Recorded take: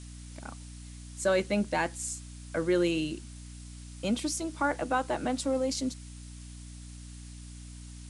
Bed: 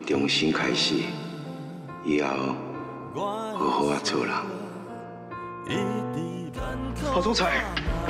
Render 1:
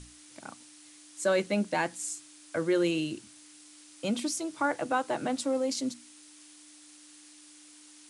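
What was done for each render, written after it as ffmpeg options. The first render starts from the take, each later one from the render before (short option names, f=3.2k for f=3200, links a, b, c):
-af "bandreject=f=60:t=h:w=6,bandreject=f=120:t=h:w=6,bandreject=f=180:t=h:w=6,bandreject=f=240:t=h:w=6"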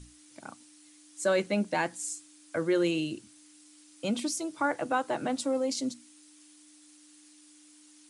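-af "afftdn=nr=6:nf=-54"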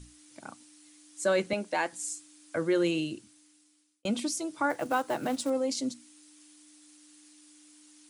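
-filter_complex "[0:a]asettb=1/sr,asplit=3[a][b][c];[a]atrim=end=1.534[d];[b]atrim=start=1.53:end=1.93,asetpts=PTS-STARTPTS,afade=t=in:d=0.004:c=qsin,afade=t=out:st=0.396:d=0.004:c=qsin,highpass=330[e];[c]atrim=start=1.926[f];[d][e]acrossfade=d=0.004:c1=hsin:c2=qsin[g];[g][f]acrossfade=d=0.004:c1=qsin:c2=hsin,asettb=1/sr,asplit=3[h][i][j];[h]atrim=end=4.704[k];[i]atrim=start=4.7:end=5.5,asetpts=PTS-STARTPTS,afade=t=in:d=0.004:c=qsin,afade=t=out:st=0.796:d=0.004:c=qsin,acrusher=bits=5:mode=log:mix=0:aa=0.000001[l];[j]atrim=start=5.496[m];[k][l]acrossfade=d=0.004:c1=hsin:c2=qsin[n];[n][m]acrossfade=d=0.004:c1=qsin:c2=hsin,asplit=2[o][p];[o]atrim=end=4.05,asetpts=PTS-STARTPTS,afade=t=out:st=2.99:d=1.06[q];[p]atrim=start=4.05,asetpts=PTS-STARTPTS,afade=t=in:d=0.004:c=hsin[r];[q][r]concat=n=2:v=0:a=1"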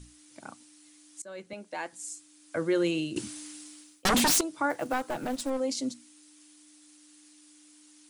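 -filter_complex "[0:a]asettb=1/sr,asplit=3[a][b][c];[a]atrim=end=3.164[d];[b]atrim=start=3.16:end=4.41,asetpts=PTS-STARTPTS,afade=t=in:d=0.004:c=qsin,afade=t=out:st=1.246:d=0.004:c=qsin,aeval=exprs='0.1*sin(PI/2*5.01*val(0)/0.1)':c=same[e];[c]atrim=start=4.406[f];[d][e]acrossfade=d=0.004:c1=hsin:c2=qsin[g];[g][f]acrossfade=d=0.004:c1=qsin:c2=hsin,asettb=1/sr,asplit=3[h][i][j];[h]atrim=end=4.934[k];[i]atrim=start=4.93:end=5.6,asetpts=PTS-STARTPTS,afade=t=in:d=0.004:c=qsin,afade=t=out:st=0.666:d=0.004:c=qsin,aeval=exprs='clip(val(0),-1,0.0211)':c=same[l];[j]atrim=start=5.596[m];[k][l]acrossfade=d=0.004:c1=hsin:c2=qsin[n];[n][m]acrossfade=d=0.004:c1=qsin:c2=hsin,asplit=2[o][p];[o]atrim=end=1.22,asetpts=PTS-STARTPTS,afade=t=out:st=1.216:d=0.004:c=hsin:silence=0.0668344[q];[p]atrim=start=1.22,asetpts=PTS-STARTPTS,afade=t=in:d=1.37:silence=0.0668344[r];[q][r]concat=n=2:v=0:a=1"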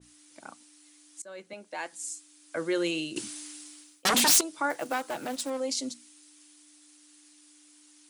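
-af "highpass=f=320:p=1,adynamicequalizer=threshold=0.00891:dfrequency=2200:dqfactor=0.7:tfrequency=2200:tqfactor=0.7:attack=5:release=100:ratio=0.375:range=2:mode=boostabove:tftype=highshelf"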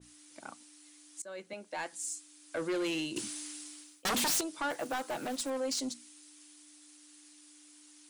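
-af "asoftclip=type=tanh:threshold=-28.5dB"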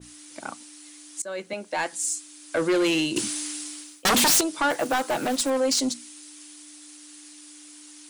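-af "volume=11dB"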